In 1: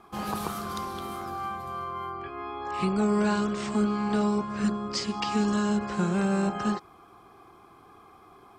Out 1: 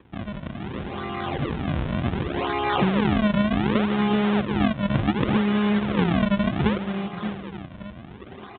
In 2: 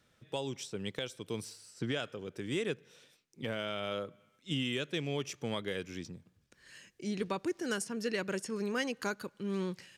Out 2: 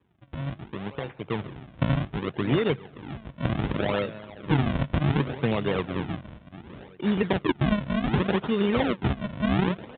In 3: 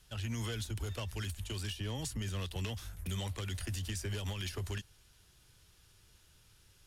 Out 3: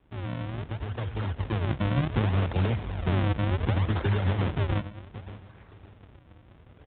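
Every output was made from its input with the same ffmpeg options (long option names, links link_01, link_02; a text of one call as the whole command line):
ffmpeg -i in.wav -filter_complex "[0:a]lowshelf=frequency=330:gain=3.5,asplit=2[link_01][link_02];[link_02]adelay=573,lowpass=frequency=2700:poles=1,volume=-15.5dB,asplit=2[link_03][link_04];[link_04]adelay=573,lowpass=frequency=2700:poles=1,volume=0.33,asplit=2[link_05][link_06];[link_06]adelay=573,lowpass=frequency=2700:poles=1,volume=0.33[link_07];[link_01][link_03][link_05][link_07]amix=inputs=4:normalize=0,aresample=16000,acrusher=samples=22:mix=1:aa=0.000001:lfo=1:lforange=35.2:lforate=0.67,aresample=44100,acompressor=threshold=-29dB:ratio=10,adynamicequalizer=threshold=0.00126:dfrequency=140:dqfactor=7.4:tfrequency=140:tqfactor=7.4:attack=5:release=100:ratio=0.375:range=3:mode=boostabove:tftype=bell,acrusher=bits=3:mode=log:mix=0:aa=0.000001,highpass=55,dynaudnorm=framelen=910:gausssize=3:maxgain=9.5dB,aresample=8000,aresample=44100,volume=1dB" out.wav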